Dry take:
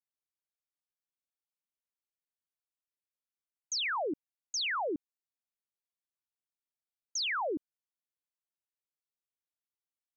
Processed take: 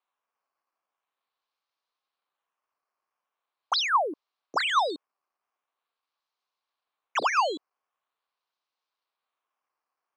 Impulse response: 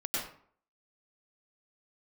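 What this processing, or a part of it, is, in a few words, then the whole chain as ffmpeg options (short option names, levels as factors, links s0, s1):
circuit-bent sampling toy: -af "acrusher=samples=8:mix=1:aa=0.000001:lfo=1:lforange=8:lforate=0.43,highpass=490,equalizer=f=770:t=q:w=4:g=3,equalizer=f=1100:t=q:w=4:g=10,equalizer=f=1900:t=q:w=4:g=-4,equalizer=f=4100:t=q:w=4:g=4,lowpass=f=5700:w=0.5412,lowpass=f=5700:w=1.3066,volume=2"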